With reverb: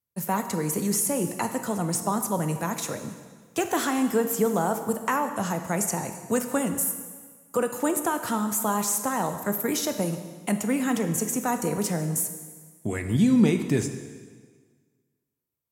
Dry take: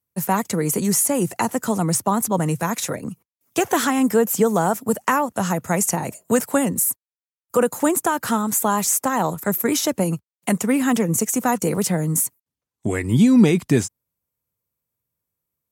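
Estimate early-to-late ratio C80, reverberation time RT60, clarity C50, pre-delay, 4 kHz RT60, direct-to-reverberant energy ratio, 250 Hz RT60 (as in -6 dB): 10.0 dB, 1.6 s, 9.0 dB, 7 ms, 1.5 s, 7.0 dB, 1.5 s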